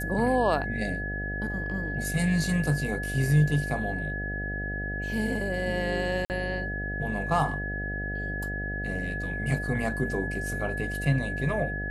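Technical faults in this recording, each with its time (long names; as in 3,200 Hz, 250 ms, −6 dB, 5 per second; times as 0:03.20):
mains buzz 50 Hz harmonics 15 −34 dBFS
whistle 1,700 Hz −33 dBFS
0:06.25–0:06.30: drop-out 49 ms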